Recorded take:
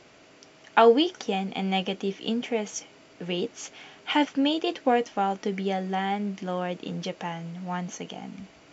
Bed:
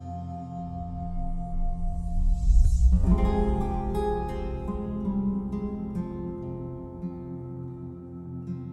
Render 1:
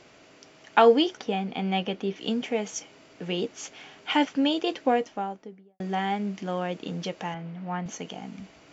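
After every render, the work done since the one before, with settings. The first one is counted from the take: 1.17–2.16 air absorption 120 m; 4.74–5.8 studio fade out; 7.34–7.86 BPF 110–2600 Hz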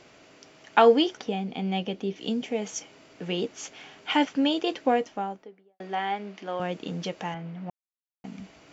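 1.2–2.62 dynamic EQ 1400 Hz, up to -7 dB, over -44 dBFS, Q 0.72; 5.43–6.6 BPF 360–4600 Hz; 7.7–8.24 mute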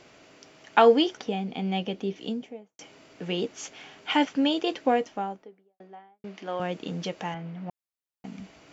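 2.07–2.79 studio fade out; 5.21–6.24 studio fade out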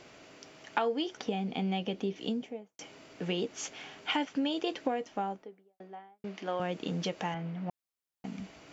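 compressor 6:1, threshold -28 dBFS, peak gain reduction 14.5 dB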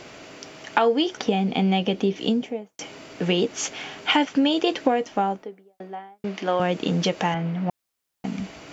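gain +11 dB; limiter -3 dBFS, peak gain reduction 2 dB

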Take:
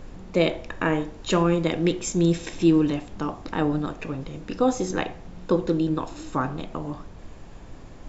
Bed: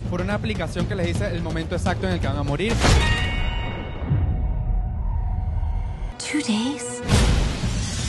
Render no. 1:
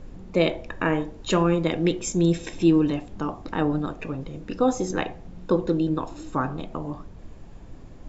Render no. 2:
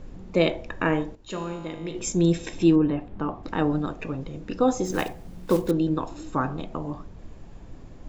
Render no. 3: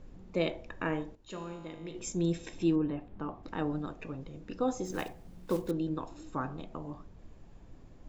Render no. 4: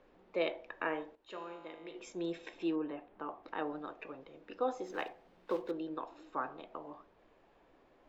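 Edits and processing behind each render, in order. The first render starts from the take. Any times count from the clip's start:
denoiser 6 dB, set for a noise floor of -43 dBFS
1.15–1.95 resonator 53 Hz, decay 1.5 s, mix 80%; 2.75–3.42 LPF 1600 Hz -> 3200 Hz; 4.85–5.72 block floating point 5-bit
gain -9.5 dB
three-band isolator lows -24 dB, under 350 Hz, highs -21 dB, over 4000 Hz

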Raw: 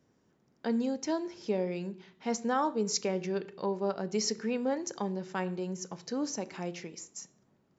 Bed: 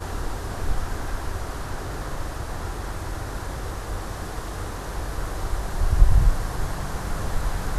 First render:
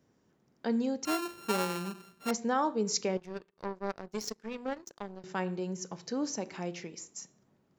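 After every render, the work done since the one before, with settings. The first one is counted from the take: 1.05–2.31 sample sorter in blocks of 32 samples; 3.17–5.24 power-law curve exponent 2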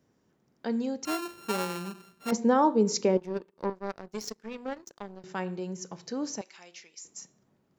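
2.32–3.7 small resonant body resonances 240/350/510/880 Hz, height 8 dB, ringing for 20 ms; 6.41–7.05 band-pass 5600 Hz, Q 0.56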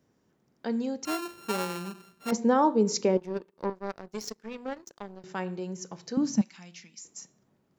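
6.17–7.03 resonant low shelf 300 Hz +11 dB, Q 3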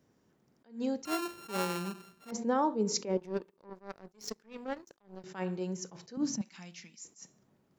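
compressor 4:1, threshold -25 dBFS, peak gain reduction 7 dB; attack slew limiter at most 190 dB/s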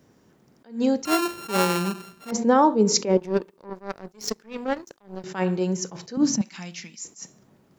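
gain +11.5 dB

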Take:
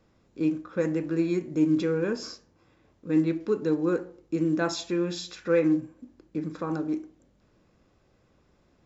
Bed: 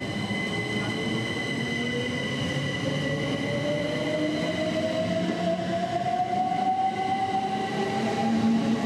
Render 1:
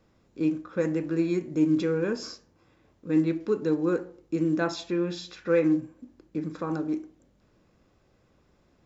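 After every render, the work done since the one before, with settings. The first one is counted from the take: 4.64–5.48 air absorption 85 m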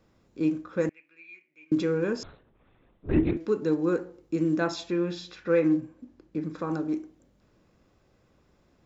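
0.89–1.72 band-pass 2400 Hz, Q 12; 2.23–3.37 LPC vocoder at 8 kHz whisper; 5.11–6.58 air absorption 55 m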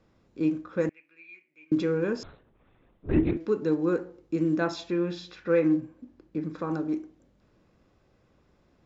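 air absorption 56 m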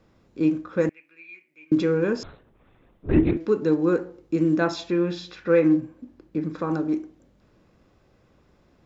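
gain +4.5 dB

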